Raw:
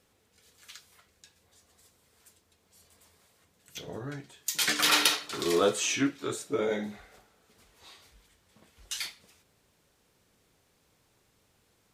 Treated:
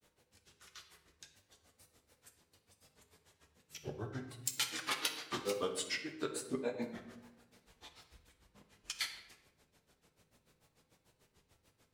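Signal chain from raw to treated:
downward compressor 12 to 1, threshold −31 dBFS, peak gain reduction 13 dB
granular cloud 113 ms, grains 6.8 per second, spray 18 ms, pitch spread up and down by 3 semitones
on a send: convolution reverb RT60 0.90 s, pre-delay 7 ms, DRR 5.5 dB
on the sum: level +1 dB

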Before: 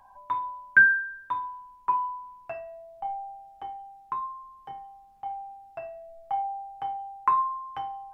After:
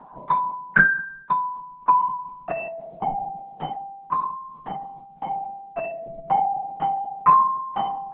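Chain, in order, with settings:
spectral tilt −2 dB per octave
notch filter 1,600 Hz, Q 24
linear-prediction vocoder at 8 kHz whisper
low shelf with overshoot 120 Hz −10.5 dB, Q 3
level +8 dB

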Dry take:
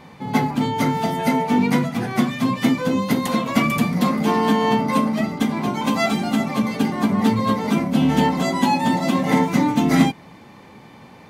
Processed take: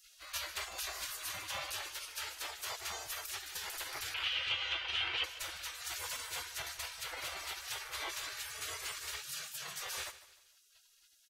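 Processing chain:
0:09.21–0:09.81: high-pass filter 300 Hz 24 dB per octave
gate on every frequency bin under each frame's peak −30 dB weak
brickwall limiter −30 dBFS, peak gain reduction 10.5 dB
speech leveller 2 s
0:04.14–0:05.24: low-pass with resonance 3,000 Hz, resonance Q 6.1
repeating echo 152 ms, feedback 37%, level −16 dB

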